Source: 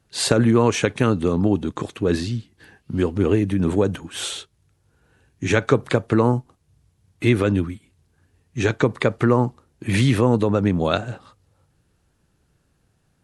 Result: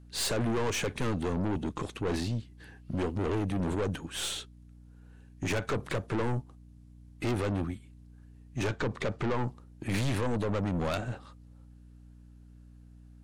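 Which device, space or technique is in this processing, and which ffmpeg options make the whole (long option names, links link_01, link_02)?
valve amplifier with mains hum: -filter_complex "[0:a]aeval=exprs='(tanh(15.8*val(0)+0.45)-tanh(0.45))/15.8':channel_layout=same,aeval=exprs='val(0)+0.00398*(sin(2*PI*60*n/s)+sin(2*PI*2*60*n/s)/2+sin(2*PI*3*60*n/s)/3+sin(2*PI*4*60*n/s)/4+sin(2*PI*5*60*n/s)/5)':channel_layout=same,asettb=1/sr,asplit=3[link_01][link_02][link_03];[link_01]atrim=end=8.674[link_04];[link_02]atrim=start=8.67:end=9.46,asetpts=PTS-STARTPTS,afade=type=in:duration=0.004:curve=qsin,afade=type=out:start_time=0.786:duration=0.004:curve=qsin,lowpass=7100[link_05];[link_03]atrim=start=9.456[link_06];[link_04][link_05]acrossfade=duration=0.004:curve1=hsin:curve2=qsin[link_07];[link_07][link_06]acrossfade=duration=0.004:curve1=qsin:curve2=hsin,volume=-3dB"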